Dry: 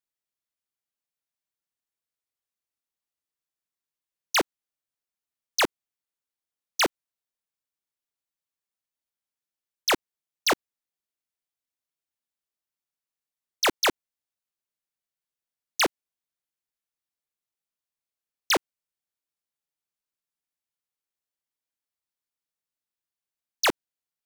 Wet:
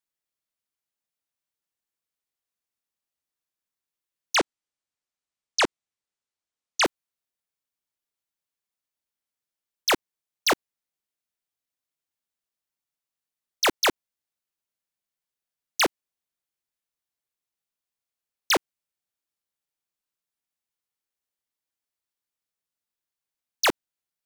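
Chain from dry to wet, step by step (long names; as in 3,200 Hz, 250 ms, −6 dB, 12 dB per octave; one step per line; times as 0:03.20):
0:04.35–0:06.85: low-pass filter 9,000 Hz 24 dB per octave
level +1 dB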